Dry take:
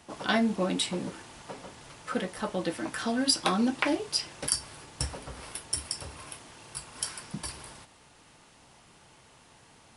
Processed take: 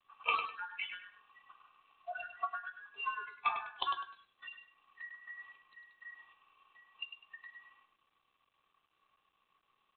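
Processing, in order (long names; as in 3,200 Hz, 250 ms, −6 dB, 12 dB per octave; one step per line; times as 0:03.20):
frequency inversion band by band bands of 2,000 Hz
noise reduction from a noise print of the clip's start 28 dB
comb filter 2.6 ms, depth 64%
downward compressor 4 to 1, threshold −42 dBFS, peak gain reduction 20 dB
pair of resonant band-passes 1,700 Hz, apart 1.2 octaves
repeating echo 101 ms, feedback 26%, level −8 dB
level +17 dB
G.726 32 kbit/s 8,000 Hz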